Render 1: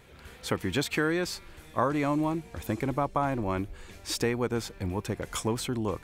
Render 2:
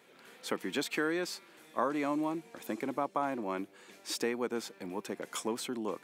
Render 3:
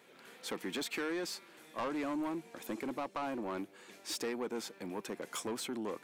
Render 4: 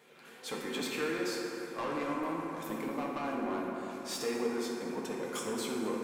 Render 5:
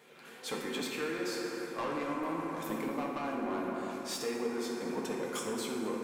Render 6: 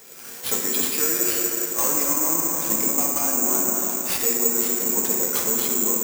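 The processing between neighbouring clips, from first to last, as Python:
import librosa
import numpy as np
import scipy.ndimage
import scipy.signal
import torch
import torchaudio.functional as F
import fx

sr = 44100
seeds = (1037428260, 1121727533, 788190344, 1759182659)

y1 = scipy.signal.sosfilt(scipy.signal.butter(4, 210.0, 'highpass', fs=sr, output='sos'), x)
y1 = y1 * librosa.db_to_amplitude(-4.5)
y2 = 10.0 ** (-31.5 / 20.0) * np.tanh(y1 / 10.0 ** (-31.5 / 20.0))
y3 = fx.rev_fdn(y2, sr, rt60_s=3.8, lf_ratio=1.0, hf_ratio=0.4, size_ms=39.0, drr_db=-3.5)
y3 = y3 * librosa.db_to_amplitude(-1.5)
y4 = fx.rider(y3, sr, range_db=10, speed_s=0.5)
y5 = (np.kron(y4[::6], np.eye(6)[0]) * 6)[:len(y4)]
y5 = y5 * librosa.db_to_amplitude(6.0)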